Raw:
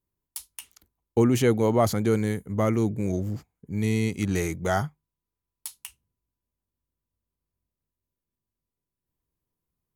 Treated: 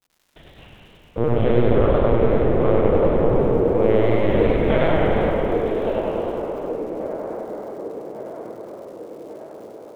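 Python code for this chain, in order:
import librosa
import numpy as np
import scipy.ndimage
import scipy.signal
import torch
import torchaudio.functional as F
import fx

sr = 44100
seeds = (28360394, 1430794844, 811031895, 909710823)

p1 = fx.lower_of_two(x, sr, delay_ms=1.8)
p2 = fx.highpass(p1, sr, hz=120.0, slope=6)
p3 = fx.peak_eq(p2, sr, hz=320.0, db=12.0, octaves=1.7)
p4 = fx.rev_plate(p3, sr, seeds[0], rt60_s=3.5, hf_ratio=0.75, predelay_ms=0, drr_db=-8.5)
p5 = fx.lpc_vocoder(p4, sr, seeds[1], excitation='pitch_kept', order=8)
p6 = fx.dmg_crackle(p5, sr, seeds[2], per_s=230.0, level_db=-43.0)
p7 = p6 + fx.echo_wet_bandpass(p6, sr, ms=1149, feedback_pct=58, hz=530.0, wet_db=-7.0, dry=0)
p8 = fx.rider(p7, sr, range_db=4, speed_s=0.5)
p9 = fx.echo_warbled(p8, sr, ms=100, feedback_pct=68, rate_hz=2.8, cents=103, wet_db=-5)
y = p9 * 10.0 ** (-4.5 / 20.0)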